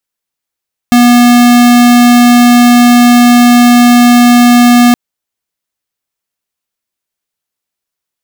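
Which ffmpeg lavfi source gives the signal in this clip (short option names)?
-f lavfi -i "aevalsrc='0.631*(2*lt(mod(242*t,1),0.5)-1)':d=4.02:s=44100"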